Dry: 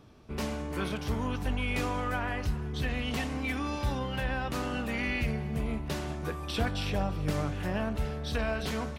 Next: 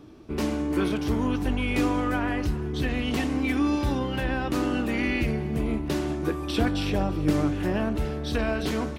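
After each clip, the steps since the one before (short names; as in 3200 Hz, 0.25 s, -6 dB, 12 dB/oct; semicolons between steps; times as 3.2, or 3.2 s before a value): bell 320 Hz +13.5 dB 0.5 oct; gain +3 dB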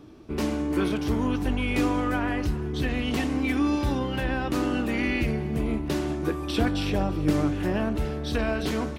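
nothing audible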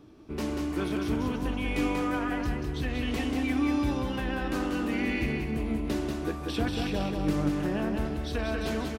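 feedback echo 0.188 s, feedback 37%, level -4 dB; on a send at -21 dB: reverb RT60 0.45 s, pre-delay 0.132 s; on the sum: gain -5 dB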